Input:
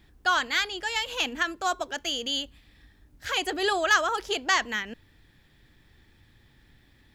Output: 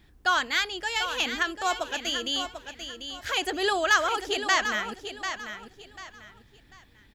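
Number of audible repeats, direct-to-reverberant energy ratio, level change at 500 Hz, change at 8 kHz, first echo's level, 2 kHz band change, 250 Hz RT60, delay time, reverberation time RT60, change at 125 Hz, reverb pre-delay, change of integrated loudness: 3, no reverb audible, +0.5 dB, +0.5 dB, −9.0 dB, +0.5 dB, no reverb audible, 743 ms, no reverb audible, can't be measured, no reverb audible, −0.5 dB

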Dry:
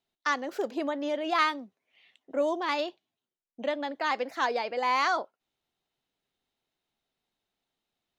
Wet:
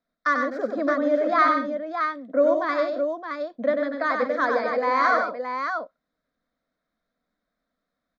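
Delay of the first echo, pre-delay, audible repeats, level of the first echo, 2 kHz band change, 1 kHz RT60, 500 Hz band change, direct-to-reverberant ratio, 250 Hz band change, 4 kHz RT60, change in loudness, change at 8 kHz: 94 ms, no reverb audible, 3, −5.0 dB, +6.5 dB, no reverb audible, +9.0 dB, no reverb audible, +7.5 dB, no reverb audible, +6.0 dB, can't be measured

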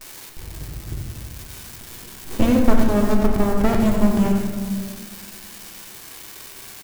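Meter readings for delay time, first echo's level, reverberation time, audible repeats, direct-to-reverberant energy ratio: 93 ms, −8.0 dB, 1.7 s, 1, −0.5 dB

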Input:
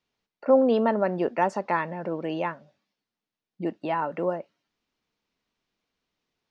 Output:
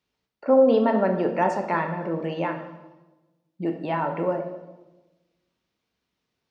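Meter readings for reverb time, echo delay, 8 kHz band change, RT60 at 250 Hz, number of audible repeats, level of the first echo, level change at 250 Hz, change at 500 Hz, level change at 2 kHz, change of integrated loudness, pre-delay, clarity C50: 1.1 s, no echo audible, can't be measured, 1.4 s, no echo audible, no echo audible, +2.5 dB, +2.5 dB, +1.5 dB, +2.5 dB, 5 ms, 7.5 dB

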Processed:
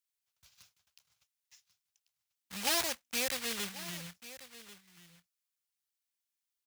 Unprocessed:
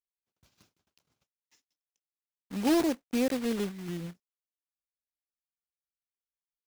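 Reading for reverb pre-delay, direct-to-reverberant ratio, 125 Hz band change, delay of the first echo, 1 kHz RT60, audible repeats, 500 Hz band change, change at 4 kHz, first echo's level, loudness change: no reverb audible, no reverb audible, −10.5 dB, 1,090 ms, no reverb audible, 1, −10.0 dB, +6.5 dB, −16.0 dB, −4.0 dB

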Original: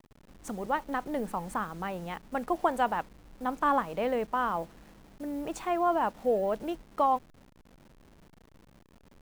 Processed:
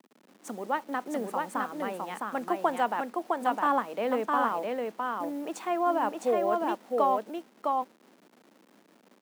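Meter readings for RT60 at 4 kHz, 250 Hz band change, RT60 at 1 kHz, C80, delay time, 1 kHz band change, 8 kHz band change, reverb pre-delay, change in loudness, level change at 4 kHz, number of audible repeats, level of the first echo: no reverb audible, +1.0 dB, no reverb audible, no reverb audible, 659 ms, +2.0 dB, +2.0 dB, no reverb audible, +1.0 dB, +2.0 dB, 1, −3.0 dB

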